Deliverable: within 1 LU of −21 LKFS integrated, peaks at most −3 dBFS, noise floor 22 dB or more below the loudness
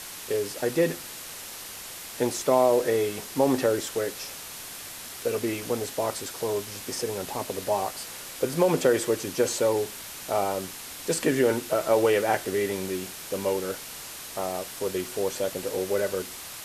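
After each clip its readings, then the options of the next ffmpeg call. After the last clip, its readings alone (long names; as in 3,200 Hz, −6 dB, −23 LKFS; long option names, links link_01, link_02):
background noise floor −40 dBFS; target noise floor −50 dBFS; integrated loudness −27.5 LKFS; sample peak −8.5 dBFS; target loudness −21.0 LKFS
→ -af "afftdn=noise_reduction=10:noise_floor=-40"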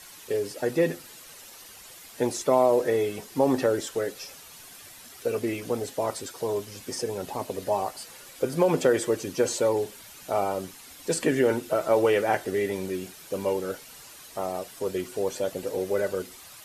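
background noise floor −47 dBFS; target noise floor −50 dBFS
→ -af "afftdn=noise_reduction=6:noise_floor=-47"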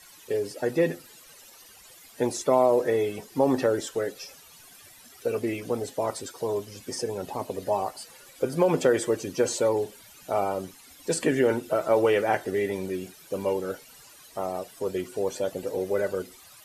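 background noise floor −51 dBFS; integrated loudness −27.5 LKFS; sample peak −8.5 dBFS; target loudness −21.0 LKFS
→ -af "volume=6.5dB,alimiter=limit=-3dB:level=0:latency=1"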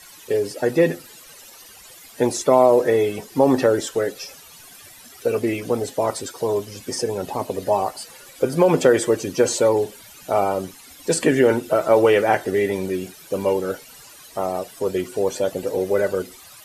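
integrated loudness −21.0 LKFS; sample peak −3.0 dBFS; background noise floor −45 dBFS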